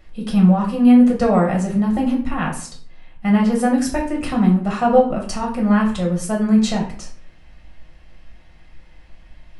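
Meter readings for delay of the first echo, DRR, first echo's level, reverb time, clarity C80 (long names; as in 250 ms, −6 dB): no echo audible, −2.0 dB, no echo audible, 0.50 s, 12.5 dB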